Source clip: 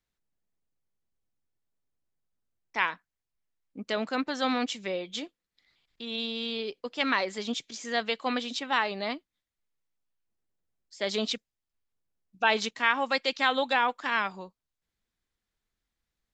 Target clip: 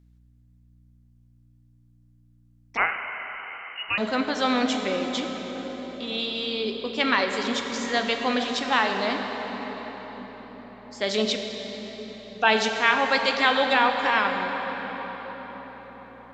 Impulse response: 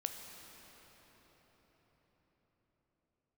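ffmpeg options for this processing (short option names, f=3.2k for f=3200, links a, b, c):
-filter_complex "[0:a]aeval=exprs='val(0)+0.001*(sin(2*PI*60*n/s)+sin(2*PI*2*60*n/s)/2+sin(2*PI*3*60*n/s)/3+sin(2*PI*4*60*n/s)/4+sin(2*PI*5*60*n/s)/5)':c=same[a];[1:a]atrim=start_sample=2205,asetrate=38808,aresample=44100[b];[a][b]afir=irnorm=-1:irlink=0,asettb=1/sr,asplit=3[c][d][e];[c]atrim=end=2.774[f];[d]atrim=start=2.77:end=3.98,asetpts=PTS-STARTPTS,afade=t=in:d=0.004:c=qsin,afade=t=out:st=1.206:d=0.004:c=qsin,lowpass=f=2.6k:t=q:w=0.5098,lowpass=f=2.6k:t=q:w=0.6013,lowpass=f=2.6k:t=q:w=0.9,lowpass=f=2.6k:t=q:w=2.563,afreqshift=-3100[g];[e]atrim=start=3.976[h];[f][g]acrossfade=d=0.004:c1=hsin:c2=qsin[i];[i][h]acrossfade=d=0.004:c1=qsin:c2=hsin,volume=5dB"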